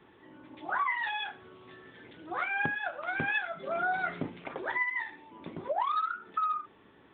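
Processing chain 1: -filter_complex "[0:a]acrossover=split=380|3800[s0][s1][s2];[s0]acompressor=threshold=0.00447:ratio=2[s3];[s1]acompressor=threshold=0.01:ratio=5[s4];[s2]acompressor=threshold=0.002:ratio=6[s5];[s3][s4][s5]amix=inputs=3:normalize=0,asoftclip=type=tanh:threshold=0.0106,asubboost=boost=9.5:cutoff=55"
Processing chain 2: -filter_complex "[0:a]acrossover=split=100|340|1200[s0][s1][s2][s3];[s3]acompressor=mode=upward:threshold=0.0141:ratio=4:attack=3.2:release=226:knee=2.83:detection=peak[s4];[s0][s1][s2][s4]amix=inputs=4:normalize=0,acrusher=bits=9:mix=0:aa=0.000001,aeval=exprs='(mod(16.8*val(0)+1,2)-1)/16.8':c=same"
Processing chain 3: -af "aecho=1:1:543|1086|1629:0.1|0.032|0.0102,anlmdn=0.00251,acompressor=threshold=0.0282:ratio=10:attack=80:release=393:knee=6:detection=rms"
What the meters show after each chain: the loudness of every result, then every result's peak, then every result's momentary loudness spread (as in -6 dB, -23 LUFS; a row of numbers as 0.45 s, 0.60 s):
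-45.5 LUFS, -32.5 LUFS, -35.5 LUFS; -34.5 dBFS, -24.5 dBFS, -18.5 dBFS; 10 LU, 14 LU, 17 LU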